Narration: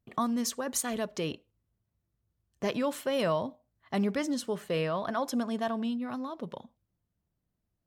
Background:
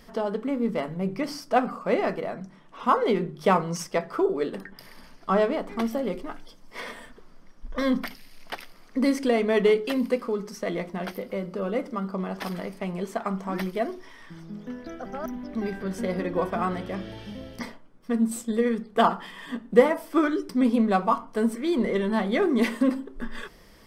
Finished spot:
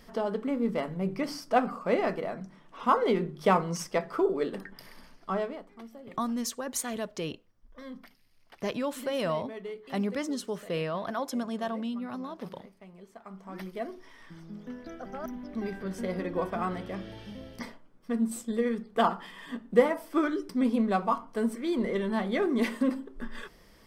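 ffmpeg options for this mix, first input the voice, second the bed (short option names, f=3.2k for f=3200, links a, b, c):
-filter_complex "[0:a]adelay=6000,volume=-1.5dB[a];[1:a]volume=12.5dB,afade=t=out:st=4.88:d=0.83:silence=0.141254,afade=t=in:st=13.21:d=1.06:silence=0.177828[b];[a][b]amix=inputs=2:normalize=0"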